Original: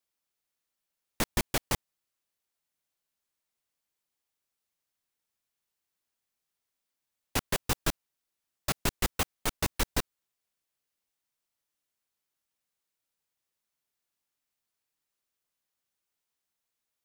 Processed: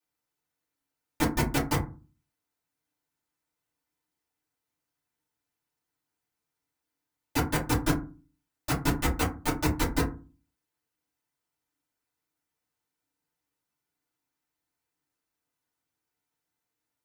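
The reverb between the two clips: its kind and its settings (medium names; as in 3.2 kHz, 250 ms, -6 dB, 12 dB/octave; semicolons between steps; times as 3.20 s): FDN reverb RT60 0.33 s, low-frequency decay 1.55×, high-frequency decay 0.4×, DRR -9.5 dB; trim -7 dB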